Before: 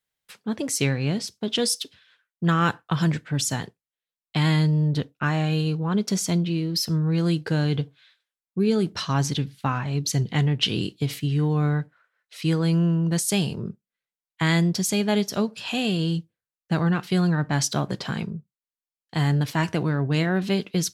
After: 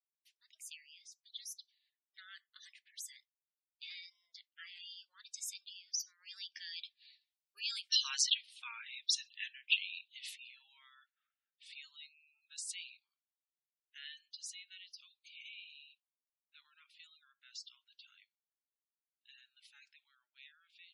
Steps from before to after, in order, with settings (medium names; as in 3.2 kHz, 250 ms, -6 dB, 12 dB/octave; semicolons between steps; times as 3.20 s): Doppler pass-by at 8.02 s, 42 m/s, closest 23 m; ladder high-pass 2.1 kHz, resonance 25%; spectral gate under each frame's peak -15 dB strong; trim +7 dB